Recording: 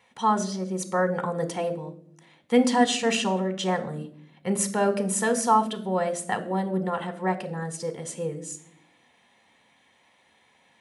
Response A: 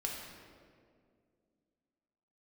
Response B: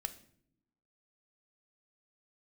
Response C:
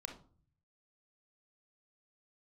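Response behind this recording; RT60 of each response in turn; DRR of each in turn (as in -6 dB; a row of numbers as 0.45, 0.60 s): B; 2.2 s, not exponential, 0.45 s; -1.5, 9.0, 3.5 dB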